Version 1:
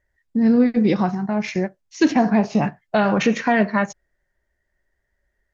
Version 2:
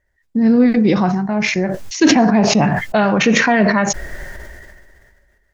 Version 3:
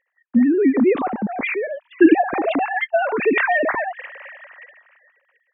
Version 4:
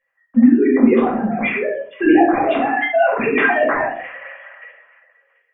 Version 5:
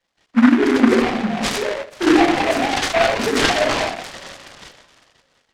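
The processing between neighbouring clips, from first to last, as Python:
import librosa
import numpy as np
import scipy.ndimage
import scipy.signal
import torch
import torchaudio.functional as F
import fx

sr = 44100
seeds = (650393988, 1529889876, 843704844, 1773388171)

y1 = fx.sustainer(x, sr, db_per_s=28.0)
y1 = y1 * librosa.db_to_amplitude(3.0)
y2 = fx.sine_speech(y1, sr)
y2 = y2 * librosa.db_to_amplitude(-4.0)
y3 = fx.room_shoebox(y2, sr, seeds[0], volume_m3=430.0, walls='furnished', distance_m=5.7)
y3 = y3 * librosa.db_to_amplitude(-6.0)
y4 = fx.noise_mod_delay(y3, sr, seeds[1], noise_hz=1300.0, depth_ms=0.14)
y4 = y4 * librosa.db_to_amplitude(-1.5)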